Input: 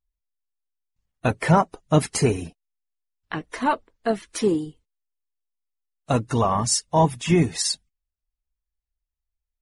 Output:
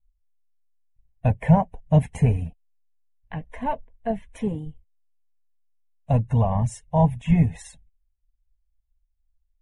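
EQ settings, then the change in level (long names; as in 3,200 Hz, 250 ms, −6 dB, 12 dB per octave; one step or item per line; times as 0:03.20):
dynamic equaliser 1,200 Hz, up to −4 dB, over −41 dBFS, Q 6
spectral tilt −3.5 dB per octave
phaser with its sweep stopped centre 1,300 Hz, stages 6
−3.5 dB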